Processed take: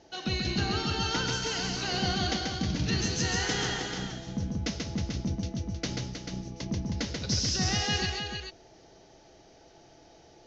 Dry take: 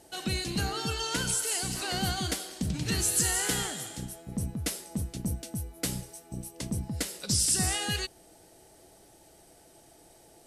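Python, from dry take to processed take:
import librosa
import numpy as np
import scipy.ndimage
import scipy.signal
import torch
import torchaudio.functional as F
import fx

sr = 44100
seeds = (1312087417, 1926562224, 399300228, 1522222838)

y = scipy.signal.sosfilt(scipy.signal.butter(16, 6500.0, 'lowpass', fs=sr, output='sos'), x)
y = fx.echo_multitap(y, sr, ms=(136, 315, 439), db=(-3.5, -7.5, -7.5))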